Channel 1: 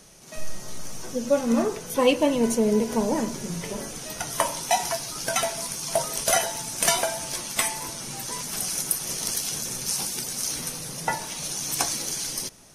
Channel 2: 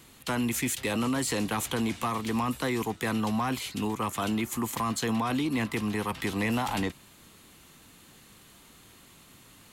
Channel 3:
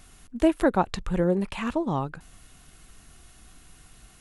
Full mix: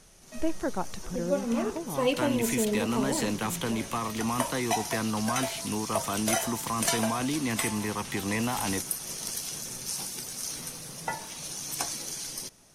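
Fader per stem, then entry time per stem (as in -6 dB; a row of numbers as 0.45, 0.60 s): -6.5, -1.5, -9.5 dB; 0.00, 1.90, 0.00 s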